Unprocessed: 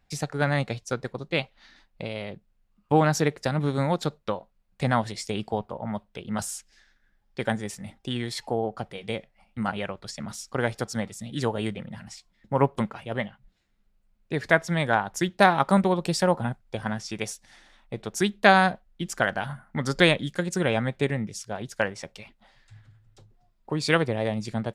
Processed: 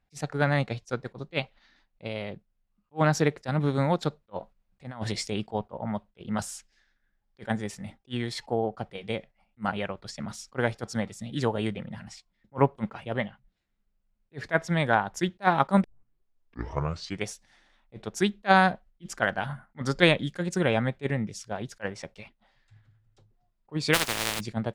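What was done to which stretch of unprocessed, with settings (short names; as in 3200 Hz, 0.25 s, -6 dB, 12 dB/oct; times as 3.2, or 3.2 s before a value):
4.3–5.33 negative-ratio compressor -30 dBFS, ratio -0.5
15.84 tape start 1.44 s
23.93–24.39 spectral contrast lowered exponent 0.13
whole clip: gate -46 dBFS, range -7 dB; high shelf 7700 Hz -9.5 dB; attack slew limiter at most 470 dB/s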